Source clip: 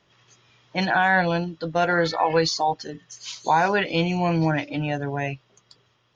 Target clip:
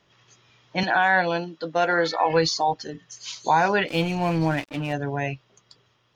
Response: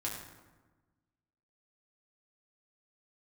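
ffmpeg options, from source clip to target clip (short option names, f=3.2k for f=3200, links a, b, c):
-filter_complex "[0:a]asettb=1/sr,asplit=3[a][b][c];[a]atrim=end=0.834[d];[b]atrim=start=0.83:end=2.26,asetpts=PTS-STARTPTS,afade=t=in:d=0.004:c=qsin,afade=t=out:st=1.426:d=0.004:c=qsin,highpass=250[e];[c]atrim=start=2.256[f];[d][e]acrossfade=d=0.004:c1=hsin:c2=qsin[g];[g][f]acrossfade=d=0.004:c1=qsin:c2=hsin,asplit=3[h][i][j];[h]afade=t=out:st=3.87:d=0.02[k];[i]aeval=exprs='sgn(val(0))*max(abs(val(0))-0.0158,0)':c=same,afade=t=in:st=3.87:d=0.02,afade=t=out:st=4.92:d=0.02[l];[j]afade=t=in:st=4.92:d=0.02[m];[k][l][m]amix=inputs=3:normalize=0"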